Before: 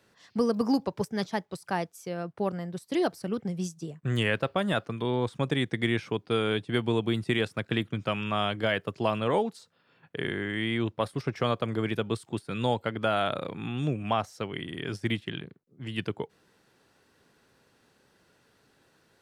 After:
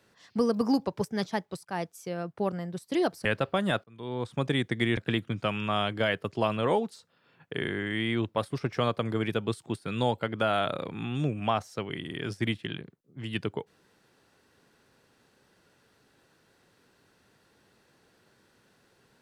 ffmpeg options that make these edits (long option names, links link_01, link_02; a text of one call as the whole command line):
ffmpeg -i in.wav -filter_complex "[0:a]asplit=5[link_01][link_02][link_03][link_04][link_05];[link_01]atrim=end=1.65,asetpts=PTS-STARTPTS,afade=type=out:start_time=1.646:duration=0.004:curve=hsin:silence=0.11885[link_06];[link_02]atrim=start=1.65:end=3.252,asetpts=PTS-STARTPTS,afade=type=in:duration=0.25:curve=qsin:silence=0.11885[link_07];[link_03]atrim=start=4.268:end=4.86,asetpts=PTS-STARTPTS,afade=type=out:start_time=0.588:duration=0.004:curve=hsin[link_08];[link_04]atrim=start=4.86:end=5.992,asetpts=PTS-STARTPTS,afade=type=in:duration=0.6[link_09];[link_05]atrim=start=7.598[link_10];[link_06][link_07]concat=n=2:v=0:a=1[link_11];[link_08][link_09]concat=n=2:v=0:a=1[link_12];[link_11][link_12]acrossfade=duration=0.004:curve1=hsin:curve2=hsin[link_13];[link_13][link_10]acrossfade=duration=0.004:curve1=hsin:curve2=hsin" out.wav